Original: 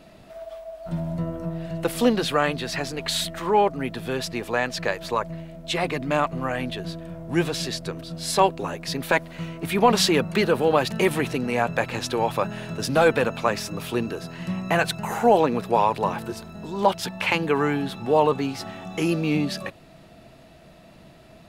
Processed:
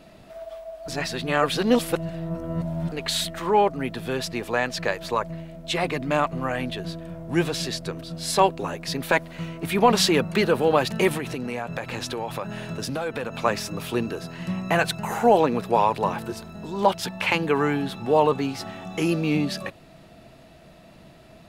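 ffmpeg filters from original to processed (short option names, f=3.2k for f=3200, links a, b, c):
-filter_complex "[0:a]asettb=1/sr,asplit=3[a][b][c];[a]atrim=end=11.174[d];[b]atrim=start=11.17:end=13.39,asetpts=PTS-STARTPTS,afade=t=in:d=0.004:c=qsin,afade=t=out:st=2.216:d=0.004:c=qsin,acompressor=threshold=-26dB:ratio=4:attack=3.2:release=140:knee=1:detection=peak[e];[c]atrim=start=13.386[f];[d][e]acrossfade=d=0.004:c1=hsin:c2=qsin[g];[g][f]acrossfade=d=0.004:c1=qsin:c2=hsin,asplit=3[h][i][j];[h]atrim=end=0.882[k];[i]atrim=start=0.878:end=2.922,asetpts=PTS-STARTPTS,areverse[l];[j]atrim=start=2.918[m];[k][l]acrossfade=d=0.004:c1=hsin:c2=hsin[n];[n][m]acrossfade=d=0.004:c1=hsin:c2=hsin"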